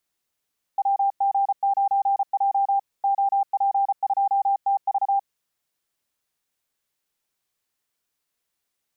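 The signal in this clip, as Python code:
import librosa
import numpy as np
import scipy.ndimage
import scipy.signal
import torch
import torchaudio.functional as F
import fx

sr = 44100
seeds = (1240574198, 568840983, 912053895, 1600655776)

y = fx.morse(sr, text='WG9J OP2TV', wpm=34, hz=793.0, level_db=-17.5)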